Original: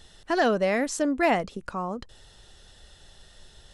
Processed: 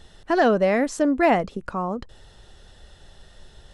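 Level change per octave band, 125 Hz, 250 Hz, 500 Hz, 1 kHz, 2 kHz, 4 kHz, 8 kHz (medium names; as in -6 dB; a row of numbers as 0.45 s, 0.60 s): +5.0 dB, +5.0 dB, +4.5 dB, +4.0 dB, +2.0 dB, -1.0 dB, -2.5 dB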